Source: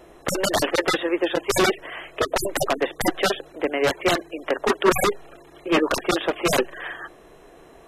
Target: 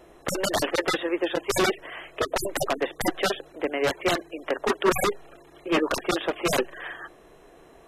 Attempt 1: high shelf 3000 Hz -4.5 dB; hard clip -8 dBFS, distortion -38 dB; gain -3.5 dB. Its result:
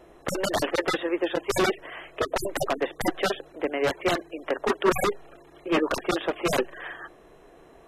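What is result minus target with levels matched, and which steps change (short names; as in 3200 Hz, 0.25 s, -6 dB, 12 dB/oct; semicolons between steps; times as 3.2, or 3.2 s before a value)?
8000 Hz band -3.0 dB
remove: high shelf 3000 Hz -4.5 dB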